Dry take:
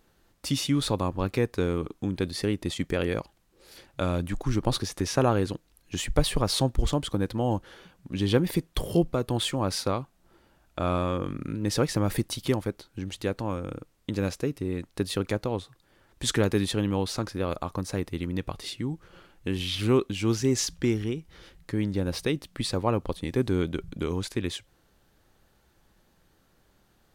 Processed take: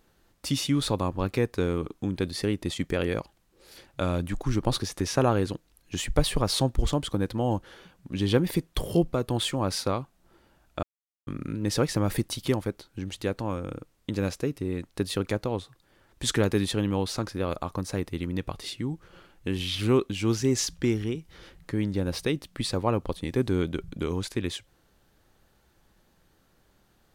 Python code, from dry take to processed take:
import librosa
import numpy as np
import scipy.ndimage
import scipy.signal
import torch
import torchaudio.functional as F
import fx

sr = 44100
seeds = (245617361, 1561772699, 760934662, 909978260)

y = fx.band_squash(x, sr, depth_pct=40, at=(21.15, 21.72))
y = fx.edit(y, sr, fx.silence(start_s=10.83, length_s=0.44), tone=tone)